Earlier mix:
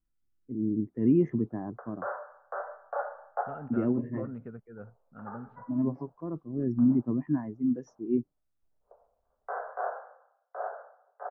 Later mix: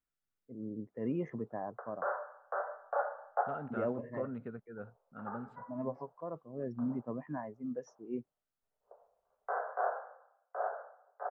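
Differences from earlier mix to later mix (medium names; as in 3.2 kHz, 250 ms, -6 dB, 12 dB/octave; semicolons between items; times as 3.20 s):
first voice: add resonant low shelf 420 Hz -7.5 dB, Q 3; second voice: remove distance through air 360 m; master: add bass shelf 98 Hz -10 dB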